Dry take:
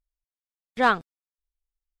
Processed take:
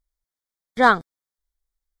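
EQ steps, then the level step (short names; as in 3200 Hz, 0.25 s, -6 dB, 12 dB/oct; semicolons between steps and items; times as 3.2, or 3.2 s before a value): Butterworth band-stop 2700 Hz, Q 2.8; +5.0 dB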